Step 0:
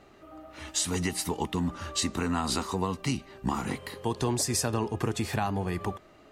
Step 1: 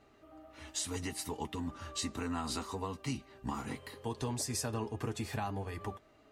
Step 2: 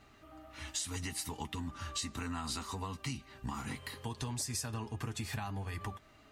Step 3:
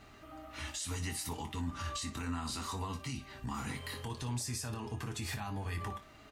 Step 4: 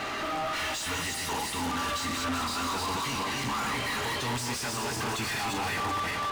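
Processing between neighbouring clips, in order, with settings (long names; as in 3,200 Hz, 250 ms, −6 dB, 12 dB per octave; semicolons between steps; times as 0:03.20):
notch comb filter 180 Hz; level −7 dB
parametric band 460 Hz −10 dB 1.7 octaves; downward compressor 2.5 to 1, threshold −45 dBFS, peak gain reduction 8.5 dB; level +7 dB
brickwall limiter −34.5 dBFS, peak gain reduction 10 dB; on a send: ambience of single reflections 24 ms −9.5 dB, 58 ms −13.5 dB; on the sum: level +4 dB
feedback delay that plays each chunk backwards 191 ms, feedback 48%, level −2.5 dB; mid-hump overdrive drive 38 dB, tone 3,500 Hz, clips at −23.5 dBFS; mains-hum notches 50/100 Hz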